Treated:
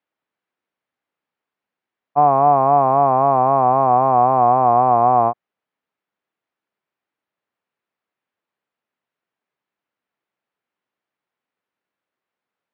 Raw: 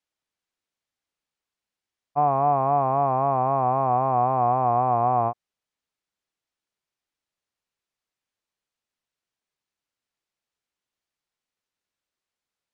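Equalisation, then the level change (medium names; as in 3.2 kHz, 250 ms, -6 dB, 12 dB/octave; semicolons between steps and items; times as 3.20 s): band-pass 160–2100 Hz; +7.5 dB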